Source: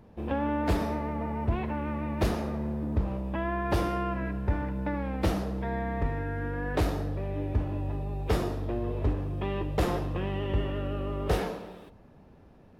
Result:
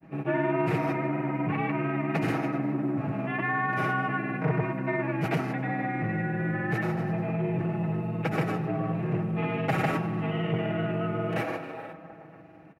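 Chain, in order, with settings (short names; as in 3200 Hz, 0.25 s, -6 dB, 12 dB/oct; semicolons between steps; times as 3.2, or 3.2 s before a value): resonant high shelf 2900 Hz -7 dB, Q 3; notch 920 Hz, Q 7; band-limited delay 0.425 s, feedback 36%, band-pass 700 Hz, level -14 dB; frequency shift +67 Hz; in parallel at -3 dB: limiter -23 dBFS, peak gain reduction 8.5 dB; on the sum: thirty-one-band EQ 125 Hz -9 dB, 500 Hz -11 dB, 4000 Hz +4 dB; grains, pitch spread up and down by 0 st; comb 6.2 ms, depth 69%; spring tank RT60 2.3 s, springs 54 ms, chirp 50 ms, DRR 15 dB; core saturation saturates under 410 Hz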